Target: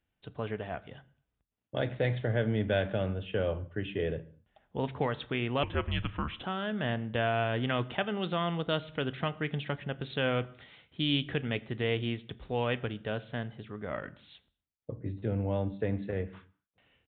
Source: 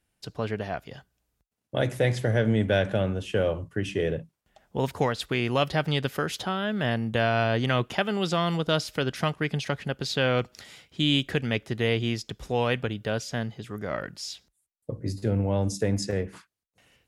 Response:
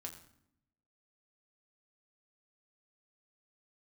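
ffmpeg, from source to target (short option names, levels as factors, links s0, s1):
-filter_complex "[0:a]aresample=8000,aresample=44100,asplit=2[s0][s1];[1:a]atrim=start_sample=2205,afade=t=out:st=0.31:d=0.01,atrim=end_sample=14112[s2];[s1][s2]afir=irnorm=-1:irlink=0,volume=0.596[s3];[s0][s3]amix=inputs=2:normalize=0,asettb=1/sr,asplit=3[s4][s5][s6];[s4]atrim=end=5.634[s7];[s5]atrim=start=5.63:end=6.44,asetpts=PTS-STARTPTS,afade=t=in:d=0.004:c=qsin,afade=t=out:st=0.806:d=0.004:c=qsin,afreqshift=-240[s8];[s6]atrim=start=6.436[s9];[s7][s8]acrossfade=d=0.004:c1=hsin:c2=qsin[s10];[s10][s9]acrossfade=d=0.004:c1=qsin:c2=hsin,volume=0.398"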